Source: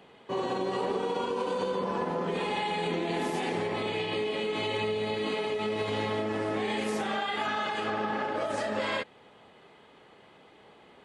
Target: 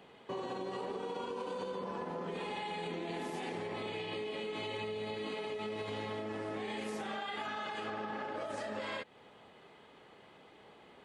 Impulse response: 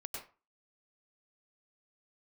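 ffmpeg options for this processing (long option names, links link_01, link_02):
-af "acompressor=threshold=-36dB:ratio=3,volume=-2.5dB"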